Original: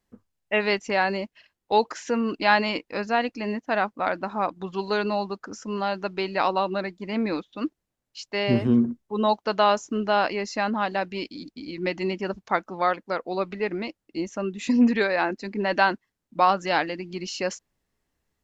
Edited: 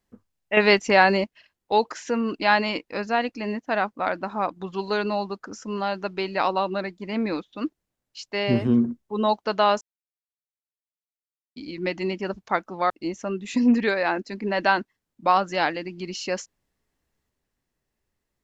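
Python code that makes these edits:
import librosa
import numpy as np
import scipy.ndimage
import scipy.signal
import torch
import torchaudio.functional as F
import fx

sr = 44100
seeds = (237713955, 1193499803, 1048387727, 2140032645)

y = fx.edit(x, sr, fx.clip_gain(start_s=0.57, length_s=0.67, db=6.5),
    fx.silence(start_s=9.81, length_s=1.75),
    fx.cut(start_s=12.9, length_s=1.13), tone=tone)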